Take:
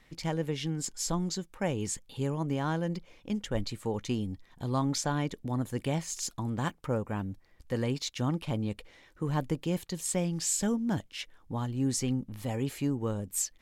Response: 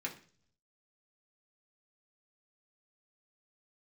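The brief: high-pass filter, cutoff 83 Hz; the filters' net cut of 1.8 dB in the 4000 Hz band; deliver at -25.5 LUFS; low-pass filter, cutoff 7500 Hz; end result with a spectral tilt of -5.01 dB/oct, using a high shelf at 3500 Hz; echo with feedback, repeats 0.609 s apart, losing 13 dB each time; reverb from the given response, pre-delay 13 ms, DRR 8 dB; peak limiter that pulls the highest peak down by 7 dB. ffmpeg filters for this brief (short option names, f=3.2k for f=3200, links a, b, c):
-filter_complex "[0:a]highpass=83,lowpass=7.5k,highshelf=f=3.5k:g=4.5,equalizer=f=4k:t=o:g=-5.5,alimiter=limit=-23dB:level=0:latency=1,aecho=1:1:609|1218|1827:0.224|0.0493|0.0108,asplit=2[a][b];[1:a]atrim=start_sample=2205,adelay=13[c];[b][c]afir=irnorm=-1:irlink=0,volume=-9.5dB[d];[a][d]amix=inputs=2:normalize=0,volume=8dB"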